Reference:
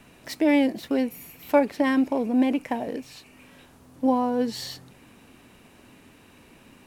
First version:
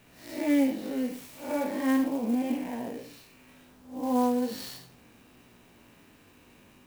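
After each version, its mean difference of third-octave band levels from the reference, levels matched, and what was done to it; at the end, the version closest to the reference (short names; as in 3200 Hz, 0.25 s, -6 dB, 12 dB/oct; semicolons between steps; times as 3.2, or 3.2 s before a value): 4.5 dB: time blur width 0.186 s; high shelf 8400 Hz +6.5 dB; chorus 0.37 Hz, delay 16.5 ms, depth 3.9 ms; clock jitter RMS 0.028 ms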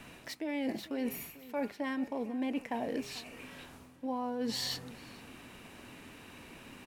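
9.0 dB: bell 2200 Hz +3.5 dB 2.8 oct; de-hum 203.8 Hz, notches 14; reverse; compressor 12:1, threshold -32 dBFS, peak gain reduction 20.5 dB; reverse; outdoor echo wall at 76 m, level -18 dB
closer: first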